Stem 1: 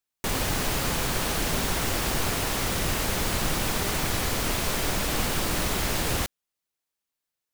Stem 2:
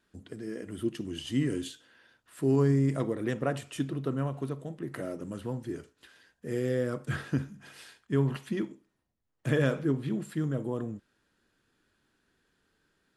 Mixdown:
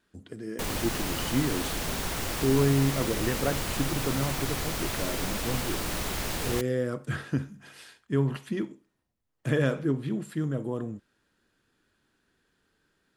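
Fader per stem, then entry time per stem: −5.0, +1.0 decibels; 0.35, 0.00 seconds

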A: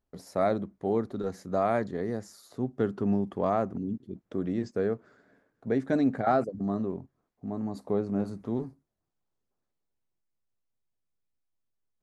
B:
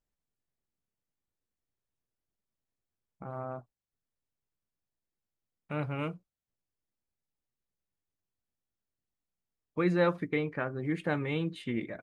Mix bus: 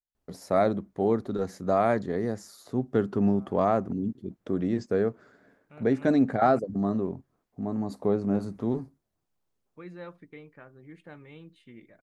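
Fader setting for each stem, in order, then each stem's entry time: +3.0, −16.0 decibels; 0.15, 0.00 seconds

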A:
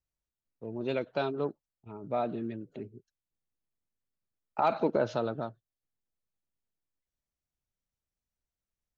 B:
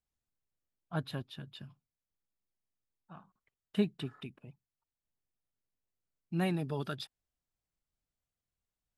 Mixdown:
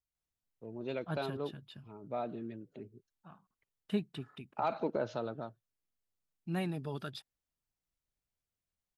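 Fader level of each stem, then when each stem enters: −6.5, −3.5 decibels; 0.00, 0.15 seconds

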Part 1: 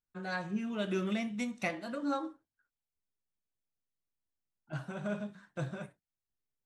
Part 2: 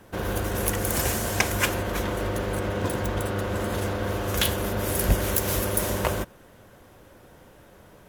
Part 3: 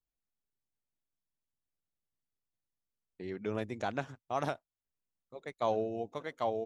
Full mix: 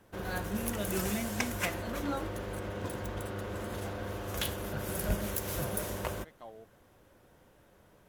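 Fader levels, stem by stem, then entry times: −2.5, −10.5, −16.0 decibels; 0.00, 0.00, 0.00 seconds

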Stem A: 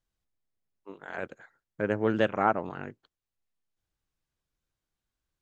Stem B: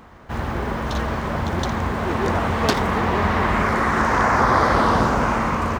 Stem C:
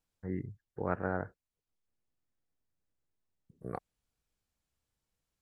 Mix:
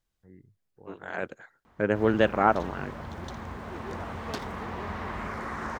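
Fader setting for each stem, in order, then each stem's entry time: +3.0, −15.5, −16.0 decibels; 0.00, 1.65, 0.00 seconds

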